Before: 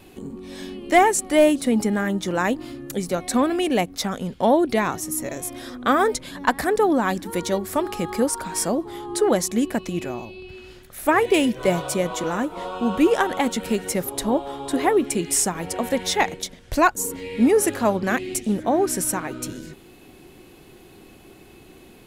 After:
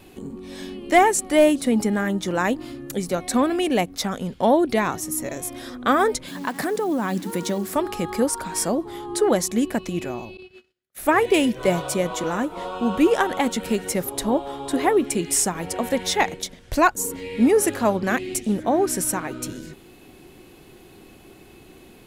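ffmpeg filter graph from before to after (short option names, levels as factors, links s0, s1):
-filter_complex "[0:a]asettb=1/sr,asplit=3[s0][s1][s2];[s0]atrim=end=6.284[s3];[s1]atrim=start=6.28:end=7.75,asetpts=PTS-STARTPTS,afade=t=in:d=0.004:c=qsin,afade=t=out:st=1.466:d=0.004:c=qsin,acompressor=threshold=0.0891:ratio=8:attack=3.2:release=140:knee=1:detection=peak,highpass=f=170:t=q:w=1.7,acrusher=bits=8:dc=4:mix=0:aa=0.000001[s4];[s2]atrim=start=7.746[s5];[s3][s4]acrossfade=d=0.004:c1=hsin:c2=qsin[s6];[s6][s5]acrossfade=d=0.004:c1=qsin:c2=hsin,asettb=1/sr,asplit=3[s7][s8][s9];[s7]atrim=end=10.374[s10];[s8]atrim=start=10.37:end=10.99,asetpts=PTS-STARTPTS,afade=t=in:d=0.004:c=qsin,afade=t=out:st=0.616:d=0.004:c=qsin,highpass=f=190:p=1,agate=range=0.0126:threshold=0.00891:ratio=16:release=100:detection=peak,equalizer=f=920:t=o:w=0.31:g=-5.5[s11];[s9]atrim=start=10.986[s12];[s10][s11]acrossfade=d=0.004:c1=hsin:c2=qsin[s13];[s13][s12]acrossfade=d=0.004:c1=qsin:c2=hsin"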